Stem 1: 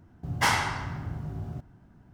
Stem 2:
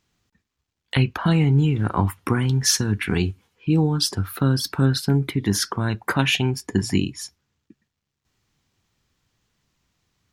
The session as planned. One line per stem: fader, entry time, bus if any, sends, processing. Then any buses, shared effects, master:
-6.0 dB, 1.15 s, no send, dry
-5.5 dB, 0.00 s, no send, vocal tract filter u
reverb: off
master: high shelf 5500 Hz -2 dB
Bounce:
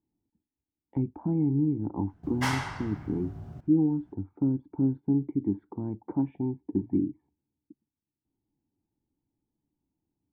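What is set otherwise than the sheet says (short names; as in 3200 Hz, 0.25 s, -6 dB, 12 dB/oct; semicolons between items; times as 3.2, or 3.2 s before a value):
stem 1: entry 1.15 s -> 2.00 s; stem 2 -5.5 dB -> +1.0 dB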